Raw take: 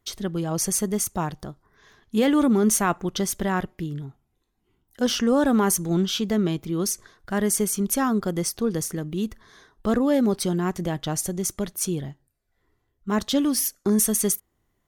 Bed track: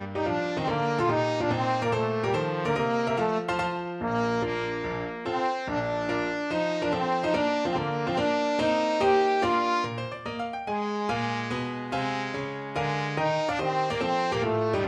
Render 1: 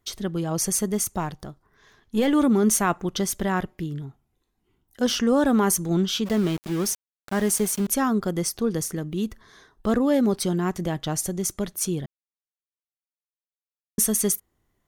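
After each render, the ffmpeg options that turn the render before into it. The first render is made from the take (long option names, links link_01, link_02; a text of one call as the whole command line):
ffmpeg -i in.wav -filter_complex "[0:a]asettb=1/sr,asplit=3[link_01][link_02][link_03];[link_01]atrim=end=1.194[link_04];[link_02]atrim=start=1.19:end=2.33,asetpts=PTS-STARTPTS,afade=type=in:duration=0.004:curve=qsin,afade=type=out:start_time=1.136:duration=0.004:curve=qsin,aeval=exprs='if(lt(val(0),0),0.708*val(0),val(0))':channel_layout=same[link_05];[link_03]atrim=start=2.326[link_06];[link_04][link_05]acrossfade=duration=0.004:curve1=hsin:curve2=qsin[link_07];[link_07][link_06]acrossfade=duration=0.004:curve1=qsin:curve2=hsin,asplit=3[link_08][link_09][link_10];[link_08]afade=type=out:start_time=6.25:duration=0.02[link_11];[link_09]aeval=exprs='val(0)*gte(abs(val(0)),0.0251)':channel_layout=same,afade=type=in:start_time=6.25:duration=0.02,afade=type=out:start_time=7.87:duration=0.02[link_12];[link_10]afade=type=in:start_time=7.87:duration=0.02[link_13];[link_11][link_12][link_13]amix=inputs=3:normalize=0,asplit=3[link_14][link_15][link_16];[link_14]atrim=end=12.06,asetpts=PTS-STARTPTS,afade=type=out:start_time=12.056:duration=0.004:curve=hsin[link_17];[link_15]atrim=start=12.06:end=13.98,asetpts=PTS-STARTPTS,volume=0[link_18];[link_16]atrim=start=13.98,asetpts=PTS-STARTPTS,afade=type=in:duration=0.004:curve=hsin[link_19];[link_17][link_18][link_19]concat=n=3:v=0:a=1" out.wav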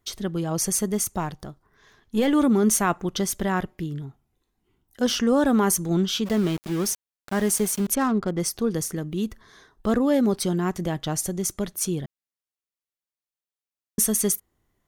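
ffmpeg -i in.wav -filter_complex "[0:a]asettb=1/sr,asplit=3[link_01][link_02][link_03];[link_01]atrim=end=7.954[link_04];[link_02]atrim=start=7.95:end=8.4,asetpts=PTS-STARTPTS,afade=type=in:duration=0.004:curve=qsin,afade=type=out:start_time=0.446:duration=0.004:curve=qsin,adynamicsmooth=sensitivity=5.5:basefreq=1200[link_05];[link_03]atrim=start=8.396[link_06];[link_04][link_05]acrossfade=duration=0.004:curve1=hsin:curve2=qsin[link_07];[link_07][link_06]acrossfade=duration=0.004:curve1=qsin:curve2=hsin" out.wav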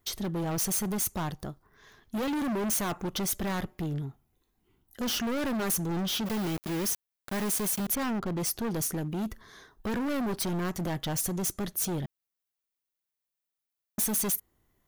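ffmpeg -i in.wav -af "asoftclip=type=hard:threshold=-28.5dB,aexciter=amount=1.2:drive=7.9:freq=11000" out.wav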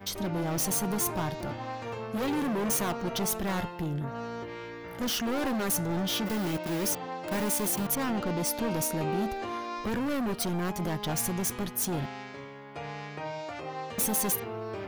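ffmpeg -i in.wav -i bed.wav -filter_complex "[1:a]volume=-11dB[link_01];[0:a][link_01]amix=inputs=2:normalize=0" out.wav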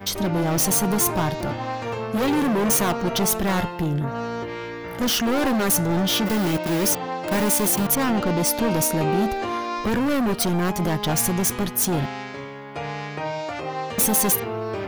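ffmpeg -i in.wav -af "volume=8.5dB" out.wav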